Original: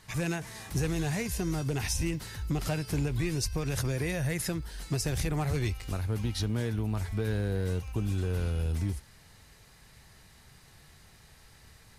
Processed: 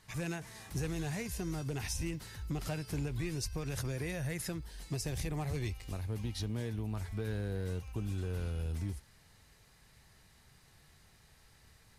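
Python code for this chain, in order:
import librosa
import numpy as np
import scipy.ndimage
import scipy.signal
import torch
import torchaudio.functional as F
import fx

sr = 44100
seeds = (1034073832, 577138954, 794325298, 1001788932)

y = fx.peak_eq(x, sr, hz=1400.0, db=-7.0, octaves=0.26, at=(4.59, 6.91))
y = y * librosa.db_to_amplitude(-6.5)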